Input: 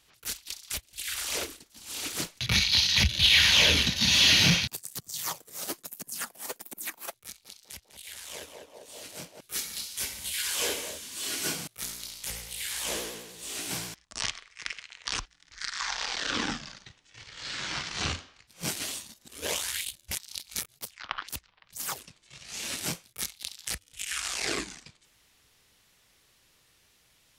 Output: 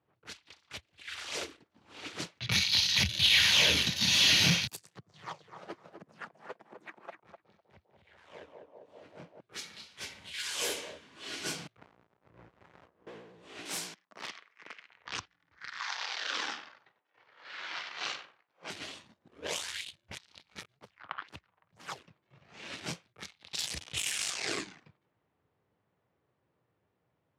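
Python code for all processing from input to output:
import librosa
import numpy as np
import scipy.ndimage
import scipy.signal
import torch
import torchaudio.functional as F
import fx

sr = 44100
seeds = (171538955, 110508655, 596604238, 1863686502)

y = fx.chain(x, sr, fx.high_shelf(hz=7000.0, db=-10.5),
    fx.notch(hz=270.0, q=6.1),
    fx.echo_feedback(ms=252, feedback_pct=15, wet_db=-7.5), at=(4.89, 8.18))
y = fx.chain(y, sr, fx.dead_time(dead_ms=0.17),
    fx.low_shelf(hz=62.0, db=9.5),
    fx.over_compress(threshold_db=-48.0, ratio=-0.5), at=(11.77, 13.07))
y = fx.chain(y, sr, fx.high_shelf(hz=7200.0, db=10.0),
    fx.overflow_wrap(gain_db=21.0),
    fx.highpass(hz=190.0, slope=24), at=(13.65, 14.89))
y = fx.chain(y, sr, fx.bandpass_edges(low_hz=570.0, high_hz=7800.0),
    fx.echo_crushed(ms=94, feedback_pct=35, bits=8, wet_db=-9), at=(15.8, 18.7))
y = fx.chain(y, sr, fx.peak_eq(hz=1200.0, db=-12.5, octaves=0.92),
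    fx.over_compress(threshold_db=-45.0, ratio=-1.0),
    fx.leveller(passes=5), at=(23.53, 24.3))
y = scipy.signal.sosfilt(scipy.signal.butter(4, 90.0, 'highpass', fs=sr, output='sos'), y)
y = fx.env_lowpass(y, sr, base_hz=840.0, full_db=-24.5)
y = fx.peak_eq(y, sr, hz=240.0, db=-4.0, octaves=0.24)
y = y * librosa.db_to_amplitude(-3.5)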